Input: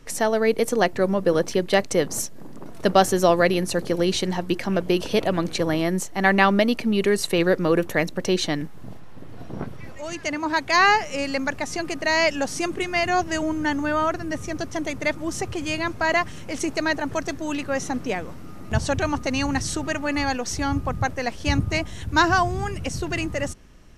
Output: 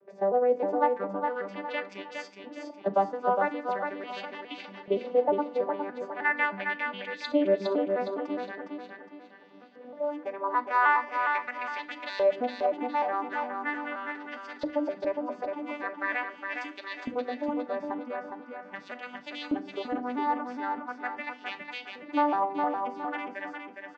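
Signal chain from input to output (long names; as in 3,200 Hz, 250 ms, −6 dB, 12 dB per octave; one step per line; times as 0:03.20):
vocoder with an arpeggio as carrier major triad, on G3, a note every 310 ms
high-shelf EQ 6,000 Hz −10.5 dB
in parallel at −1 dB: downward compressor, threshold −29 dBFS, peak gain reduction 16 dB
on the sum: auto-filter band-pass saw up 0.41 Hz 530–4,100 Hz
on a send: repeating echo 411 ms, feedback 37%, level −5 dB
on the sum: feedback delay network reverb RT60 0.37 s, low-frequency decay 1.5×, high-frequency decay 0.95×, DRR 9.5 dB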